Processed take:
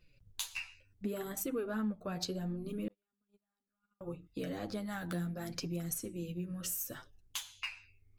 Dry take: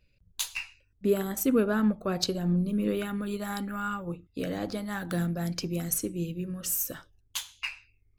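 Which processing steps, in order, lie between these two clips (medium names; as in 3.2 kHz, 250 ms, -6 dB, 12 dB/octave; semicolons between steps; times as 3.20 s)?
flange 0.69 Hz, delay 5.7 ms, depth 6.8 ms, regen +4%; compression 2.5:1, threshold -44 dBFS, peak gain reduction 15 dB; 2.88–4.01 s: gate -36 dBFS, range -50 dB; trim +4 dB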